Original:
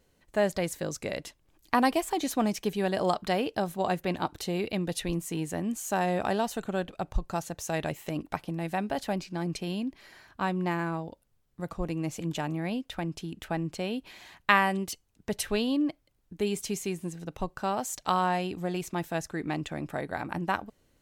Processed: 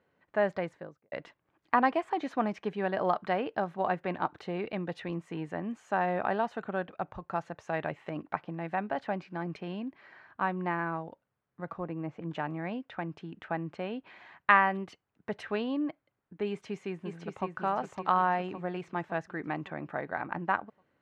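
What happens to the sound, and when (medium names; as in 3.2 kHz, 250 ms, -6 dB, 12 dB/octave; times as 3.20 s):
0.52–1.12 s: studio fade out
11.84–12.31 s: low-pass 1.4 kHz 6 dB/octave
16.49–17.47 s: echo throw 560 ms, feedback 50%, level -5 dB
whole clip: Chebyshev band-pass 120–1600 Hz, order 2; bass shelf 470 Hz -9.5 dB; trim +3 dB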